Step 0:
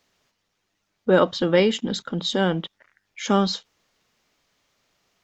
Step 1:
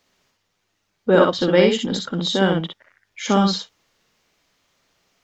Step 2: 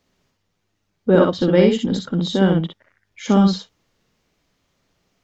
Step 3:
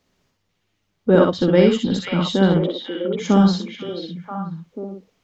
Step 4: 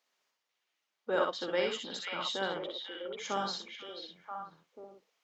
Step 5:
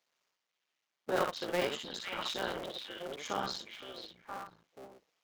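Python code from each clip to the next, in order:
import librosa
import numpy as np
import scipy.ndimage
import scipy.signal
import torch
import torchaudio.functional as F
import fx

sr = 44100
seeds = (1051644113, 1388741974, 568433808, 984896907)

y1 = fx.echo_multitap(x, sr, ms=(51, 62), db=(-12.5, -4.0))
y1 = y1 * librosa.db_to_amplitude(1.5)
y2 = fx.low_shelf(y1, sr, hz=420.0, db=11.5)
y2 = y2 * librosa.db_to_amplitude(-5.0)
y3 = fx.echo_stepped(y2, sr, ms=490, hz=2700.0, octaves=-1.4, feedback_pct=70, wet_db=-2)
y4 = fx.octave_divider(y3, sr, octaves=2, level_db=-4.0)
y4 = scipy.signal.sosfilt(scipy.signal.butter(2, 740.0, 'highpass', fs=sr, output='sos'), y4)
y4 = y4 * librosa.db_to_amplitude(-8.0)
y5 = fx.cycle_switch(y4, sr, every=3, mode='muted')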